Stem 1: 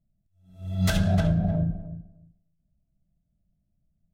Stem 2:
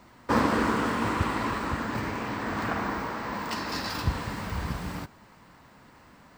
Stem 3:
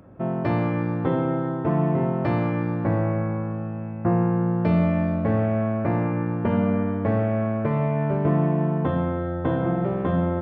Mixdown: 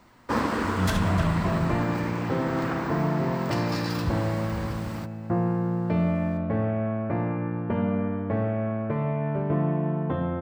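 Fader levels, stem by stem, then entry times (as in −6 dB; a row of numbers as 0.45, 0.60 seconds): −2.5, −2.0, −4.0 decibels; 0.00, 0.00, 1.25 seconds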